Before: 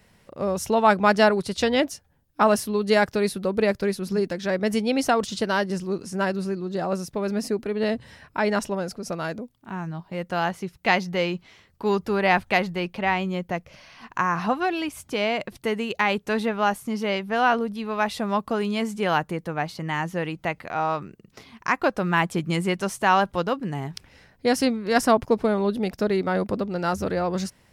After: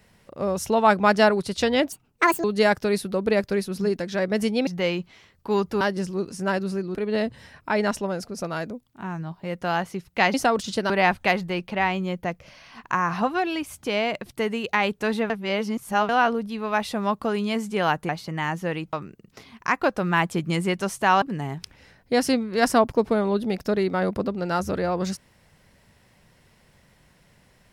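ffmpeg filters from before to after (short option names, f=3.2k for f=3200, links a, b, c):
-filter_complex "[0:a]asplit=13[a][b][c][d][e][f][g][h][i][j][k][l][m];[a]atrim=end=1.924[n];[b]atrim=start=1.92:end=2.75,asetpts=PTS-STARTPTS,asetrate=70560,aresample=44100[o];[c]atrim=start=2.746:end=4.982[p];[d]atrim=start=11.018:end=12.162[q];[e]atrim=start=5.538:end=6.682[r];[f]atrim=start=7.628:end=11.022[s];[g]atrim=start=4.978:end=5.542[t];[h]atrim=start=12.158:end=16.562[u];[i]atrim=start=16.558:end=17.352,asetpts=PTS-STARTPTS,areverse[v];[j]atrim=start=17.348:end=19.352[w];[k]atrim=start=19.598:end=20.442[x];[l]atrim=start=20.928:end=23.222[y];[m]atrim=start=23.548[z];[n][o]acrossfade=d=0.004:c1=hsin:c2=hsin[aa];[aa][p]acrossfade=d=0.004:c1=hsin:c2=hsin[ab];[ab][q]acrossfade=d=0.004:c1=hsin:c2=hsin[ac];[ac][r]acrossfade=d=0.004:c1=hsin:c2=hsin[ad];[ad][s]acrossfade=d=0.004:c1=hsin:c2=hsin[ae];[ae][t]acrossfade=d=0.004:c1=hsin:c2=hsin[af];[af][u]acrossfade=d=0.004:c1=hsin:c2=hsin[ag];[ag][v]acrossfade=d=0.004:c1=hsin:c2=hsin[ah];[ah][w]acrossfade=d=0.004:c1=hsin:c2=hsin[ai];[ai][x]acrossfade=d=0.004:c1=hsin:c2=hsin[aj];[aj][y]acrossfade=d=0.004:c1=hsin:c2=hsin[ak];[ak][z]acrossfade=d=0.004:c1=hsin:c2=hsin"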